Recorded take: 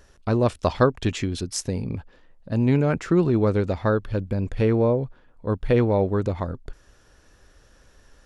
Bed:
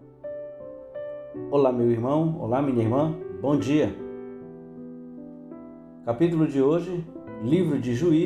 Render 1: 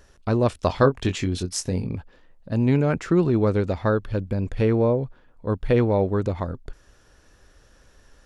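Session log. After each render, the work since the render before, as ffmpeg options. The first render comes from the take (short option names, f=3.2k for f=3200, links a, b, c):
-filter_complex "[0:a]asettb=1/sr,asplit=3[a][b][c];[a]atrim=end=0.674[d];[b]atrim=start=0.67:end=1.87,asetpts=PTS-STARTPTS,afade=t=in:d=0.004:c=qsin,afade=t=out:st=1.196:d=0.004:c=qsin,asplit=2[e][f];[f]adelay=22,volume=-8dB[g];[e][g]amix=inputs=2:normalize=0,atrim=end_sample=52920[h];[c]atrim=start=1.866[i];[d][h]acrossfade=d=0.004:c1=hsin:c2=qsin[j];[j][i]acrossfade=d=0.004:c1=qsin:c2=hsin"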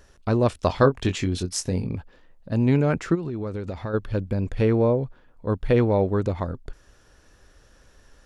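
-filter_complex "[0:a]asplit=3[a][b][c];[a]afade=t=out:st=3.14:d=0.02[d];[b]acompressor=threshold=-26dB:ratio=8:attack=3.2:release=140:knee=1:detection=peak,afade=t=in:st=3.14:d=0.02,afade=t=out:st=3.93:d=0.02[e];[c]afade=t=in:st=3.93:d=0.02[f];[d][e][f]amix=inputs=3:normalize=0"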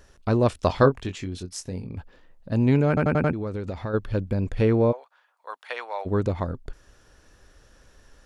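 -filter_complex "[0:a]asplit=3[a][b][c];[a]afade=t=out:st=4.91:d=0.02[d];[b]highpass=f=790:w=0.5412,highpass=f=790:w=1.3066,afade=t=in:st=4.91:d=0.02,afade=t=out:st=6.05:d=0.02[e];[c]afade=t=in:st=6.05:d=0.02[f];[d][e][f]amix=inputs=3:normalize=0,asplit=8[g][h][i][j][k][l][m][n];[g]atrim=end=1.022[o];[h]atrim=start=1.018:end=1.972,asetpts=PTS-STARTPTS,volume=-7.5dB[p];[i]atrim=start=1.968:end=2.972[q];[j]atrim=start=2.878:end=2.972[r];[k]atrim=start=2.878:end=2.972[s];[l]atrim=start=2.878:end=2.972[t];[m]atrim=start=2.878:end=2.972[u];[n]atrim=start=3.328[v];[o][p]acrossfade=d=0.004:c1=hsin:c2=hsin[w];[w][q]acrossfade=d=0.004:c1=hsin:c2=hsin[x];[x][r]acrossfade=d=0.004:c1=hsin:c2=hsin[y];[y][s]acrossfade=d=0.004:c1=hsin:c2=hsin[z];[z][t]acrossfade=d=0.004:c1=hsin:c2=hsin[aa];[aa][u]acrossfade=d=0.004:c1=hsin:c2=hsin[ab];[ab][v]acrossfade=d=0.004:c1=hsin:c2=hsin"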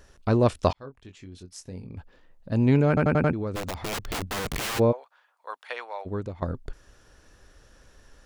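-filter_complex "[0:a]asplit=3[a][b][c];[a]afade=t=out:st=3.55:d=0.02[d];[b]aeval=exprs='(mod(18.8*val(0)+1,2)-1)/18.8':c=same,afade=t=in:st=3.55:d=0.02,afade=t=out:st=4.78:d=0.02[e];[c]afade=t=in:st=4.78:d=0.02[f];[d][e][f]amix=inputs=3:normalize=0,asplit=3[g][h][i];[g]atrim=end=0.73,asetpts=PTS-STARTPTS,afade=t=out:st=0.726:d=0.004:c=hsin[j];[h]atrim=start=0.73:end=6.42,asetpts=PTS-STARTPTS,afade=t=in:d=2.05,afade=t=out:st=4.79:d=0.9:silence=0.199526[k];[i]atrim=start=6.42,asetpts=PTS-STARTPTS,afade=t=in:d=0.004:c=hsin:silence=0.199526[l];[j][k][l]concat=n=3:v=0:a=1"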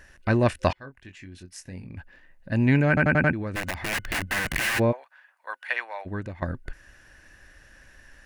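-af "superequalizer=7b=0.501:11b=3.55:12b=2.24:16b=1.41"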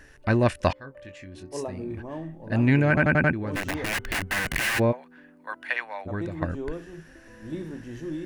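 -filter_complex "[1:a]volume=-13dB[a];[0:a][a]amix=inputs=2:normalize=0"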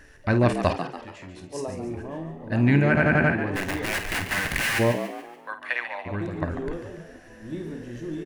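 -filter_complex "[0:a]asplit=2[a][b];[b]adelay=50,volume=-10dB[c];[a][c]amix=inputs=2:normalize=0,asplit=6[d][e][f][g][h][i];[e]adelay=143,afreqshift=82,volume=-9.5dB[j];[f]adelay=286,afreqshift=164,volume=-16.8dB[k];[g]adelay=429,afreqshift=246,volume=-24.2dB[l];[h]adelay=572,afreqshift=328,volume=-31.5dB[m];[i]adelay=715,afreqshift=410,volume=-38.8dB[n];[d][j][k][l][m][n]amix=inputs=6:normalize=0"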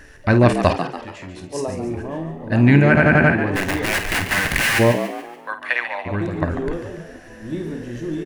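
-af "volume=6.5dB,alimiter=limit=-1dB:level=0:latency=1"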